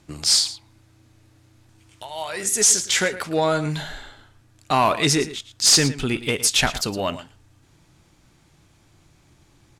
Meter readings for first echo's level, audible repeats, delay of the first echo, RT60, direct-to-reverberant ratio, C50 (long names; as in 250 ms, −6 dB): −14.5 dB, 1, 112 ms, no reverb audible, no reverb audible, no reverb audible